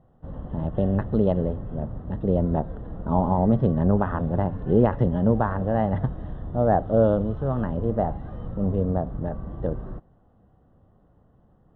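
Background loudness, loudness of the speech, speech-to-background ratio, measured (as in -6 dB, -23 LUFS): -36.5 LUFS, -24.5 LUFS, 12.0 dB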